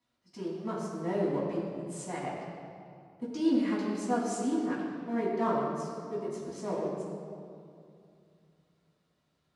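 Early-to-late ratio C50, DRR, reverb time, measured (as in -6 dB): 0.5 dB, -7.5 dB, 2.5 s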